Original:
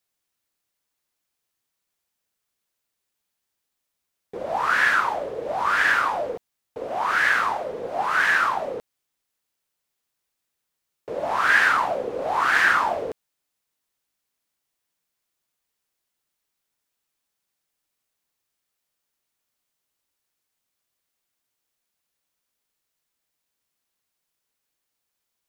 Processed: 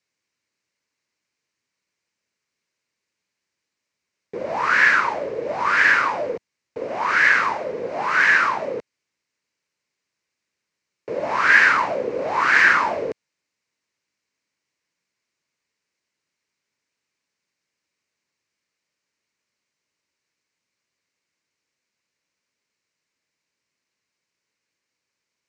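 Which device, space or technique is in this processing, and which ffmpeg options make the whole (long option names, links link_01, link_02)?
car door speaker: -af "highpass=97,equalizer=frequency=750:width_type=q:width=4:gain=-9,equalizer=frequency=1300:width_type=q:width=4:gain=-4,equalizer=frequency=2200:width_type=q:width=4:gain=5,equalizer=frequency=3400:width_type=q:width=4:gain=-8,lowpass=frequency=6600:width=0.5412,lowpass=frequency=6600:width=1.3066,volume=4.5dB"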